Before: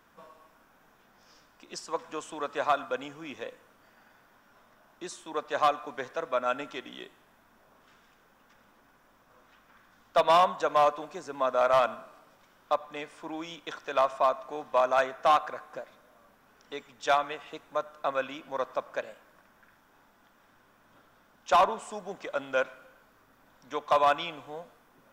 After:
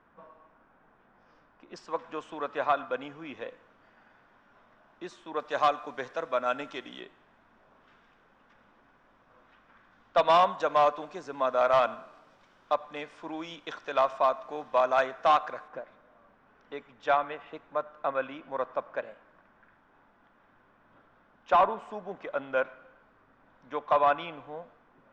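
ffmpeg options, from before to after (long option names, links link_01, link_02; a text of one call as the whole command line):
ffmpeg -i in.wav -af "asetnsamples=nb_out_samples=441:pad=0,asendcmd='1.76 lowpass f 3100;5.4 lowpass f 6200;7 lowpass f 3200;10.17 lowpass f 5100;15.68 lowpass f 2300',lowpass=1800" out.wav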